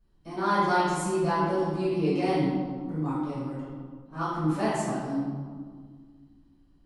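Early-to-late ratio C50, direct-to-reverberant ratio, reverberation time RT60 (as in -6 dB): -2.0 dB, -12.5 dB, 1.8 s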